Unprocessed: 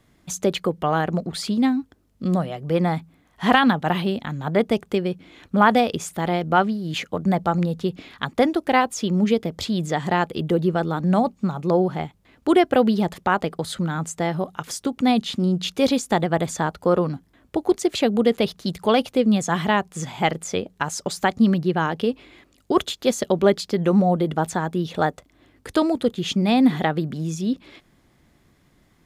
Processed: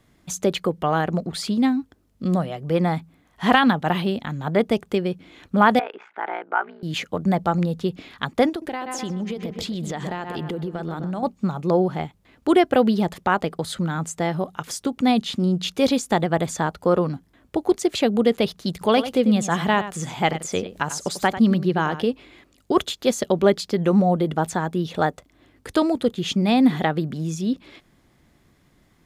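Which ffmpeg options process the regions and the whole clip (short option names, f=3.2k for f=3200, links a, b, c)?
-filter_complex "[0:a]asettb=1/sr,asplit=3[a][b][c];[a]atrim=end=5.794[d];[b]atrim=start=5.79:end=6.83,asetpts=PTS-STARTPTS,afade=t=in:d=0.004:c=qsin,afade=t=out:st=1.036:d=0.004:c=qsin,acompressor=threshold=-21dB:ratio=2.5:attack=3.2:release=140:knee=1:detection=peak,aeval=exprs='val(0)*sin(2*PI*29*n/s)':c=same,highpass=f=390:w=0.5412,highpass=f=390:w=1.3066,equalizer=f=530:t=q:w=4:g=-7,equalizer=f=880:t=q:w=4:g=7,equalizer=f=1.5k:t=q:w=4:g=10,equalizer=f=2.2k:t=q:w=4:g=4,lowpass=f=2.5k:w=0.5412,lowpass=f=2.5k:w=1.3066[e];[c]atrim=start=6.826[f];[d][e]acrossfade=d=0.004:c1=hsin:c2=qsin[g];[g][f]acrossfade=d=0.004:c1=qsin:c2=hsin,asettb=1/sr,asplit=3[h][i][j];[h]atrim=end=8.494[k];[i]atrim=start=8.49:end=11.23,asetpts=PTS-STARTPTS,afade=t=in:d=0.004:c=qsin,afade=t=out:st=2.736:d=0.004:c=qsin,asplit=2[l][m];[m]adelay=127,lowpass=f=3.4k:p=1,volume=-11.5dB,asplit=2[n][o];[o]adelay=127,lowpass=f=3.4k:p=1,volume=0.52,asplit=2[p][q];[q]adelay=127,lowpass=f=3.4k:p=1,volume=0.52,asplit=2[r][s];[s]adelay=127,lowpass=f=3.4k:p=1,volume=0.52,asplit=2[t][u];[u]adelay=127,lowpass=f=3.4k:p=1,volume=0.52,asplit=2[v][w];[w]adelay=127,lowpass=f=3.4k:p=1,volume=0.52[x];[l][n][p][r][t][v][x]amix=inputs=7:normalize=0,atrim=end_sample=120834,acompressor=threshold=-24dB:ratio=12:attack=3.2:release=140:knee=1:detection=peak[y];[j]atrim=start=11.226[z];[k][y]acrossfade=d=0.004:c1=hsin:c2=qsin[aa];[aa][z]acrossfade=d=0.004:c1=qsin:c2=hsin,asettb=1/sr,asplit=3[ab][ac][ad];[ab]atrim=end=18.814[ae];[ac]atrim=start=18.81:end=22.04,asetpts=PTS-STARTPTS,afade=t=in:d=0.004:c=qsin,afade=t=out:st=3.226:d=0.004:c=qsin,acompressor=mode=upward:threshold=-28dB:ratio=2.5:attack=3.2:release=140:knee=2.83:detection=peak,aecho=1:1:94:0.237,atrim=end_sample=142443[af];[ad]atrim=start=22.036[ag];[ae][af]acrossfade=d=0.004:c1=hsin:c2=qsin[ah];[ah][ag]acrossfade=d=0.004:c1=qsin:c2=hsin"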